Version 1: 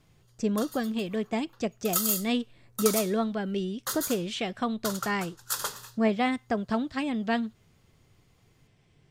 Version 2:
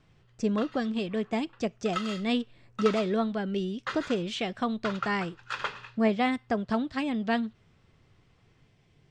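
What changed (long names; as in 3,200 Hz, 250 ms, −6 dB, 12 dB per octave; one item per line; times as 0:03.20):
background: add low-pass with resonance 2,400 Hz, resonance Q 4.6
master: add low-pass filter 7,100 Hz 12 dB per octave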